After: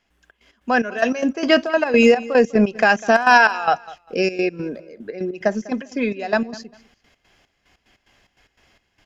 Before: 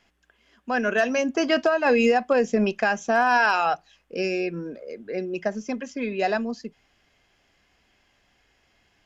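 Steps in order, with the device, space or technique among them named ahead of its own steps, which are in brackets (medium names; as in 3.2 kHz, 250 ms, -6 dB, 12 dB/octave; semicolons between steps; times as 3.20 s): 2.89–3.38 s: peaking EQ 4.3 kHz +5 dB 2.6 oct; trance gate with a delay (trance gate ".xx.x.xx..x.x" 147 bpm -12 dB; feedback delay 199 ms, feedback 24%, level -20 dB); trim +7 dB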